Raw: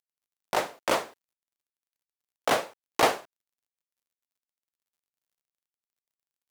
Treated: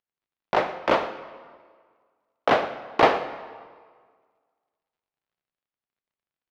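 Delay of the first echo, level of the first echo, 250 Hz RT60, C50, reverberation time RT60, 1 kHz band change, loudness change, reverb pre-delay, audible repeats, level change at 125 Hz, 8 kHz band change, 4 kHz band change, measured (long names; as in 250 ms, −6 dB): 115 ms, −17.0 dB, 1.6 s, 10.5 dB, 1.7 s, +5.5 dB, +4.0 dB, 25 ms, 1, +6.0 dB, below −10 dB, −0.5 dB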